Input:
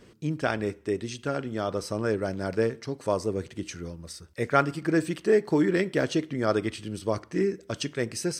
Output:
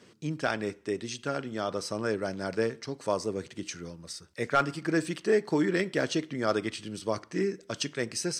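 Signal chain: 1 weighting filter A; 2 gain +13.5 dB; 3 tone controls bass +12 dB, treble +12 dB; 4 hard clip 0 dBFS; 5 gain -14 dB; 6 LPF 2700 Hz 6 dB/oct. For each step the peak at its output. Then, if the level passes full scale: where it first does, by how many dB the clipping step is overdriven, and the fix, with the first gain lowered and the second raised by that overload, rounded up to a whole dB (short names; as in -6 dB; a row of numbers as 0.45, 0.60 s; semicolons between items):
-6.5, +7.0, +8.5, 0.0, -14.0, -14.0 dBFS; step 2, 8.5 dB; step 2 +4.5 dB, step 5 -5 dB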